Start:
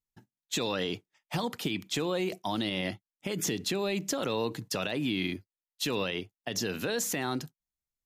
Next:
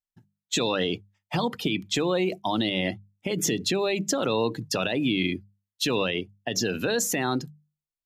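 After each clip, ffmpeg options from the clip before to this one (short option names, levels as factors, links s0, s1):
-af "afftdn=nr=13:nf=-41,bandreject=f=50:t=h:w=6,bandreject=f=100:t=h:w=6,bandreject=f=150:t=h:w=6,bandreject=f=200:t=h:w=6,volume=2"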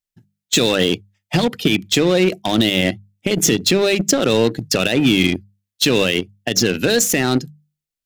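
-filter_complex "[0:a]asplit=2[s0][s1];[s1]acrusher=bits=3:mix=0:aa=0.5,volume=0.708[s2];[s0][s2]amix=inputs=2:normalize=0,equalizer=f=1000:t=o:w=0.83:g=-9.5,volume=2"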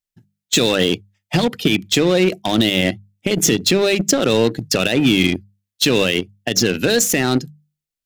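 -af anull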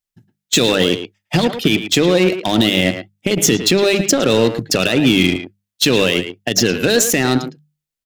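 -filter_complex "[0:a]asplit=2[s0][s1];[s1]adelay=110,highpass=300,lowpass=3400,asoftclip=type=hard:threshold=0.251,volume=0.398[s2];[s0][s2]amix=inputs=2:normalize=0,volume=1.19"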